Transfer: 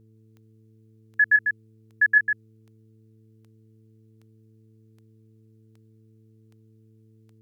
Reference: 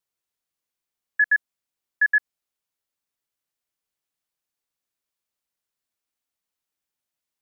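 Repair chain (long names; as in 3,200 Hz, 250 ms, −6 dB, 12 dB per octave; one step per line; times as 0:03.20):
click removal
hum removal 110 Hz, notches 4
echo removal 147 ms −5.5 dB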